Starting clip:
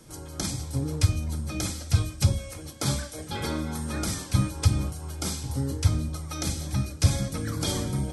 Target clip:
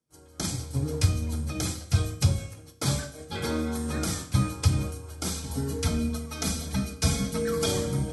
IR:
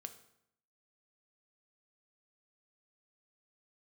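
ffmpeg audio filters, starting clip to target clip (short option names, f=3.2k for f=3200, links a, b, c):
-filter_complex "[0:a]highpass=59,agate=range=-33dB:threshold=-31dB:ratio=3:detection=peak,asettb=1/sr,asplit=3[a][b][c];[a]atrim=end=5.364[d];[b]atrim=start=5.36:end=7.66,asetpts=PTS-STARTPTS,afade=t=in:d=0.004:c=qsin,afade=t=out:st=2.296:d=0.004:c=qsin,aecho=1:1:4.5:0.8,atrim=end_sample=101430[e];[c]atrim=start=7.656[f];[d][e]acrossfade=d=0.004:c1=hsin:c2=qsin[g];[g][f]acrossfade=d=0.004:c1=qsin:c2=hsin[h];[1:a]atrim=start_sample=2205[i];[h][i]afir=irnorm=-1:irlink=0,volume=5dB"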